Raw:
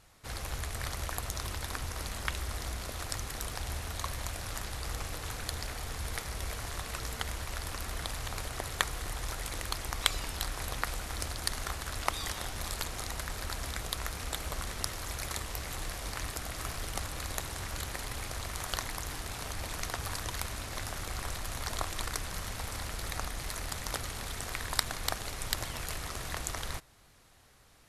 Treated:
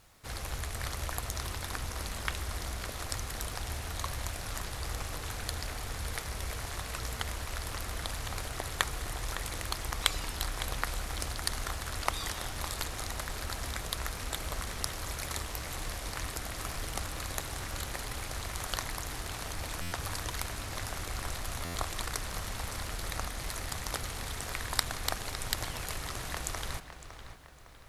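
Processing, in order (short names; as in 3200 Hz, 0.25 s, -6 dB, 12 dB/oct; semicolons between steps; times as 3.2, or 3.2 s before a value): added noise white -72 dBFS; on a send: darkening echo 0.558 s, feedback 47%, low-pass 4300 Hz, level -10.5 dB; on the sum: stuck buffer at 19.81/21.64, samples 512, times 8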